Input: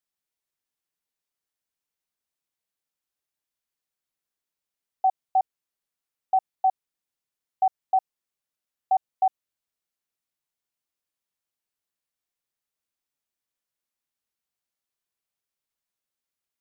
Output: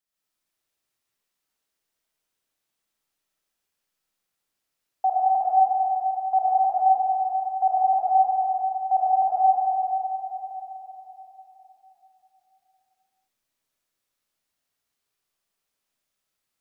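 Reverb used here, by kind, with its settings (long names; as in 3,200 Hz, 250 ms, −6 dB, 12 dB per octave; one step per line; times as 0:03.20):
comb and all-pass reverb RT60 3.9 s, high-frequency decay 0.9×, pre-delay 45 ms, DRR −9 dB
level −1 dB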